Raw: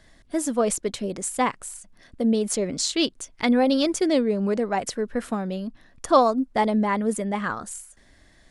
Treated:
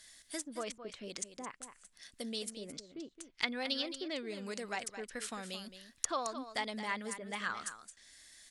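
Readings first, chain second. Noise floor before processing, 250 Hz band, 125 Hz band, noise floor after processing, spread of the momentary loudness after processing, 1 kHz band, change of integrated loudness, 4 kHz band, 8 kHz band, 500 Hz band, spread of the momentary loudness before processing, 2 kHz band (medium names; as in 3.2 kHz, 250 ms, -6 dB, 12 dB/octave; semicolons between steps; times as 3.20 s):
-56 dBFS, -21.0 dB, -20.0 dB, -68 dBFS, 15 LU, -16.5 dB, -16.0 dB, -9.0 dB, -11.5 dB, -19.0 dB, 13 LU, -7.5 dB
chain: compression 2:1, threshold -24 dBFS, peak gain reduction 7.5 dB; pre-emphasis filter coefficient 0.97; low-pass that closes with the level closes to 430 Hz, closed at -30.5 dBFS; peaking EQ 820 Hz -4.5 dB 1.8 oct; delay 218 ms -11 dB; trim +9.5 dB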